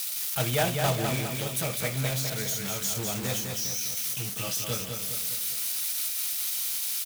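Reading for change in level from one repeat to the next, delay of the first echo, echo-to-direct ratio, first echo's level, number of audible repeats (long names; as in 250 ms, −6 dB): −6.0 dB, 204 ms, −4.0 dB, −5.0 dB, 4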